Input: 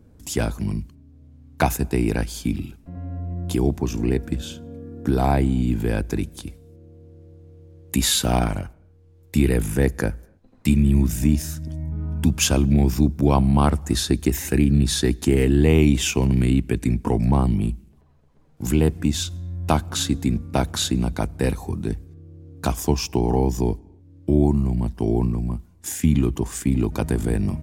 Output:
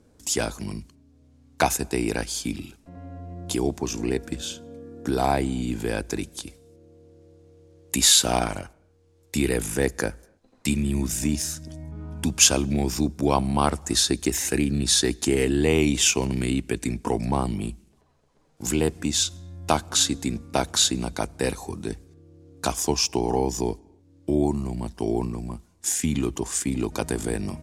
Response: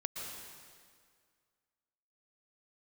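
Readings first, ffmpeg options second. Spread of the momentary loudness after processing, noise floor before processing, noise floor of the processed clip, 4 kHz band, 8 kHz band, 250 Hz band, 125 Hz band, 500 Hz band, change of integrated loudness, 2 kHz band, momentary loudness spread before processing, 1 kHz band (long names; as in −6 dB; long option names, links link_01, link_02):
15 LU, −53 dBFS, −60 dBFS, +4.0 dB, +5.5 dB, −5.0 dB, −9.0 dB, −1.5 dB, −2.0 dB, +0.5 dB, 12 LU, 0.0 dB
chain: -af "lowpass=8900,bass=frequency=250:gain=-10,treble=frequency=4000:gain=8"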